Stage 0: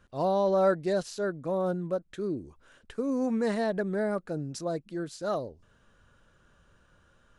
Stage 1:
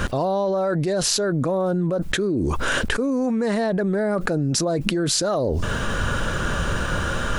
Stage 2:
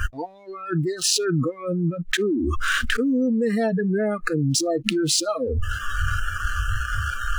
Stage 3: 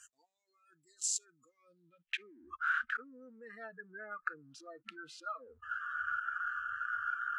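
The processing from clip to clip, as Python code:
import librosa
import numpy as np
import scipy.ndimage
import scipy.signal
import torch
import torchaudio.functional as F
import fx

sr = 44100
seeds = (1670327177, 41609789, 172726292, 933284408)

y1 = fx.env_flatten(x, sr, amount_pct=100)
y1 = y1 * 10.0 ** (-1.0 / 20.0)
y2 = fx.backlash(y1, sr, play_db=-27.0)
y2 = fx.noise_reduce_blind(y2, sr, reduce_db=28)
y2 = y2 * 10.0 ** (2.0 / 20.0)
y3 = fx.filter_sweep_bandpass(y2, sr, from_hz=7400.0, to_hz=1400.0, start_s=1.4, end_s=2.56, q=6.3)
y3 = y3 * 10.0 ** (-5.0 / 20.0)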